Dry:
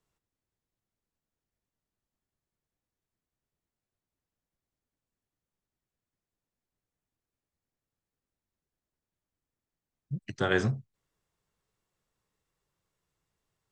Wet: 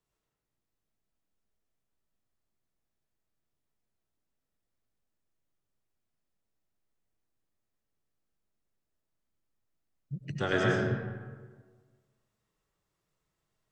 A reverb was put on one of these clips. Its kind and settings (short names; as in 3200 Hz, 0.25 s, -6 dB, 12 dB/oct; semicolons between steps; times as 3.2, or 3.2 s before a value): digital reverb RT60 1.5 s, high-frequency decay 0.55×, pre-delay 65 ms, DRR -2.5 dB; gain -3.5 dB